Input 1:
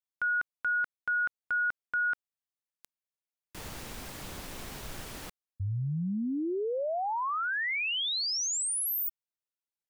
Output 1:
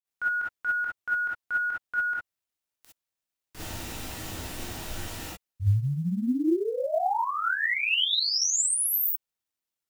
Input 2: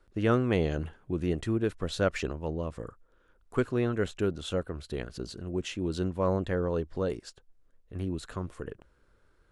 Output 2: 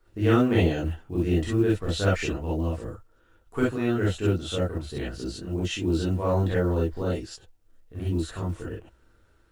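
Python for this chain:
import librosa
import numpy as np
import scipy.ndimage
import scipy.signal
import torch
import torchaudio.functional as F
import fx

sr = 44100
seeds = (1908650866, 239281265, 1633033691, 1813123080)

y = fx.rev_gated(x, sr, seeds[0], gate_ms=80, shape='rising', drr_db=-7.0)
y = fx.quant_companded(y, sr, bits=8)
y = y * 10.0 ** (-3.5 / 20.0)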